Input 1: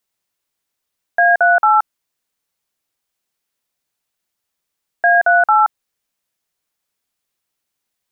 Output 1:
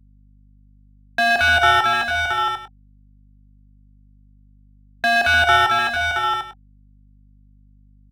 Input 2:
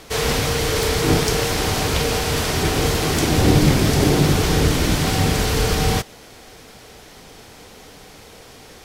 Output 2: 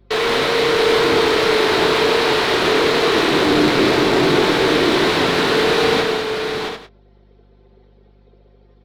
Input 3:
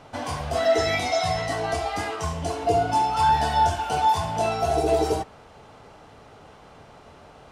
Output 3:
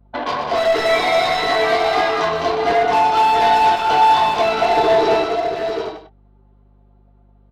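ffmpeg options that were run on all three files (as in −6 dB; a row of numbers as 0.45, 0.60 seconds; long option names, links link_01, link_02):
-filter_complex "[0:a]anlmdn=39.8,highpass=370,equalizer=frequency=380:width_type=q:width=4:gain=4,equalizer=frequency=550:width_type=q:width=4:gain=-3,equalizer=frequency=3900:width_type=q:width=4:gain=7,lowpass=frequency=4700:width=0.5412,lowpass=frequency=4700:width=1.3066,bandreject=frequency=780:width=12,asplit=2[link_01][link_02];[link_02]acompressor=threshold=-25dB:ratio=12,volume=-2dB[link_03];[link_01][link_03]amix=inputs=2:normalize=0,asoftclip=type=tanh:threshold=-20dB,acrossover=split=2500[link_04][link_05];[link_05]acompressor=threshold=-34dB:ratio=4:attack=1:release=60[link_06];[link_04][link_06]amix=inputs=2:normalize=0,volume=21.5dB,asoftclip=hard,volume=-21.5dB,asplit=2[link_07][link_08];[link_08]adelay=23,volume=-12dB[link_09];[link_07][link_09]amix=inputs=2:normalize=0,aecho=1:1:84|123|209|673|747|848:0.158|0.398|0.501|0.473|0.335|0.106,aeval=exprs='val(0)+0.00141*(sin(2*PI*50*n/s)+sin(2*PI*2*50*n/s)/2+sin(2*PI*3*50*n/s)/3+sin(2*PI*4*50*n/s)/4+sin(2*PI*5*50*n/s)/5)':channel_layout=same,volume=7dB"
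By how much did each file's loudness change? −4.0, +3.0, +7.5 LU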